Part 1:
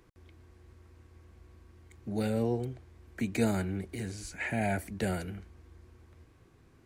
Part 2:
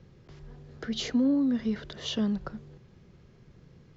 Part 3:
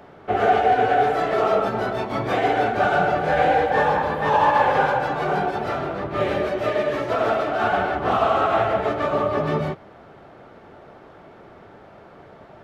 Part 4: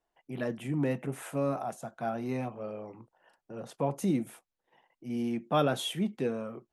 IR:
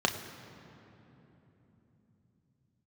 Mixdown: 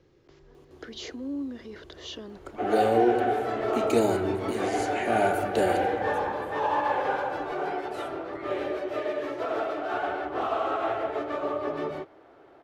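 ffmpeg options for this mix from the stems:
-filter_complex "[0:a]adelay=550,volume=1dB,asplit=2[link_01][link_02];[link_02]volume=-9.5dB[link_03];[1:a]alimiter=level_in=2dB:limit=-24dB:level=0:latency=1:release=15,volume=-2dB,volume=-3.5dB[link_04];[2:a]adelay=2300,volume=-9.5dB[link_05];[3:a]alimiter=level_in=1.5dB:limit=-24dB:level=0:latency=1:release=133,volume=-1.5dB,aeval=exprs='val(0)*sin(2*PI*910*n/s+910*0.85/1.6*sin(2*PI*1.6*n/s))':channel_layout=same,adelay=2150,volume=-11dB[link_06];[4:a]atrim=start_sample=2205[link_07];[link_03][link_07]afir=irnorm=-1:irlink=0[link_08];[link_01][link_04][link_05][link_06][link_08]amix=inputs=5:normalize=0,lowshelf=frequency=250:width_type=q:width=3:gain=-6.5"

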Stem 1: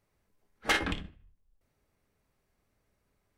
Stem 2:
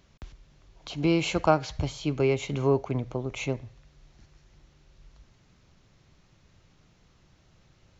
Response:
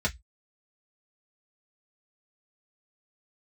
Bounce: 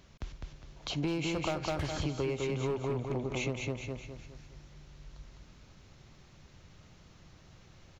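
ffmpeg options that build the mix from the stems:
-filter_complex "[0:a]adelay=1100,volume=-6dB[link_01];[1:a]asoftclip=type=hard:threshold=-18dB,volume=2.5dB,asplit=3[link_02][link_03][link_04];[link_03]volume=-3.5dB[link_05];[link_04]apad=whole_len=197494[link_06];[link_01][link_06]sidechaincompress=threshold=-25dB:ratio=8:attack=6.6:release=120[link_07];[link_05]aecho=0:1:205|410|615|820|1025:1|0.39|0.152|0.0593|0.0231[link_08];[link_07][link_02][link_08]amix=inputs=3:normalize=0,acompressor=threshold=-30dB:ratio=8"

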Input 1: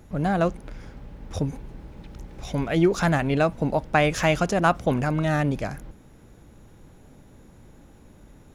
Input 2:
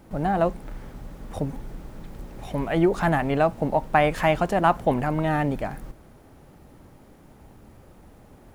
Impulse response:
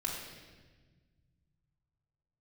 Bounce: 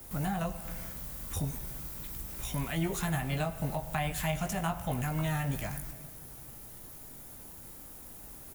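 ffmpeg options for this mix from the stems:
-filter_complex "[0:a]acrossover=split=210|3000[link_01][link_02][link_03];[link_02]acompressor=threshold=-32dB:ratio=6[link_04];[link_01][link_04][link_03]amix=inputs=3:normalize=0,volume=-6dB,asplit=2[link_05][link_06];[link_06]volume=-15.5dB[link_07];[1:a]highpass=600,aemphasis=mode=production:type=75fm,flanger=delay=17:depth=2.1:speed=0.36,volume=-1,adelay=0.4,volume=-2dB,asplit=2[link_08][link_09];[link_09]volume=-11dB[link_10];[2:a]atrim=start_sample=2205[link_11];[link_07][link_10]amix=inputs=2:normalize=0[link_12];[link_12][link_11]afir=irnorm=-1:irlink=0[link_13];[link_05][link_08][link_13]amix=inputs=3:normalize=0,highshelf=frequency=5200:gain=7.5,acrossover=split=400[link_14][link_15];[link_15]acompressor=threshold=-39dB:ratio=2.5[link_16];[link_14][link_16]amix=inputs=2:normalize=0"

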